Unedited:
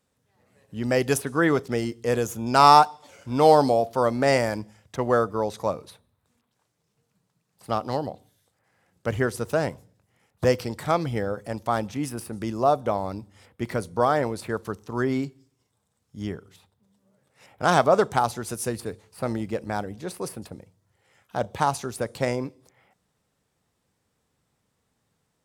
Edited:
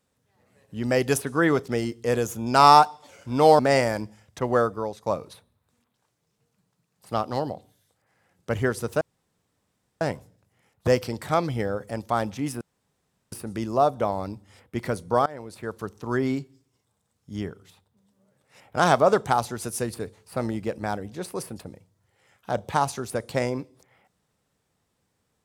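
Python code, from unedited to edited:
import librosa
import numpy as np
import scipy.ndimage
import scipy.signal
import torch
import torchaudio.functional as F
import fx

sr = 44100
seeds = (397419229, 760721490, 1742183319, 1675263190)

y = fx.edit(x, sr, fx.cut(start_s=3.59, length_s=0.57),
    fx.fade_out_to(start_s=5.05, length_s=0.58, curve='qsin', floor_db=-14.5),
    fx.insert_room_tone(at_s=9.58, length_s=1.0),
    fx.insert_room_tone(at_s=12.18, length_s=0.71),
    fx.fade_in_from(start_s=14.12, length_s=0.73, floor_db=-21.5), tone=tone)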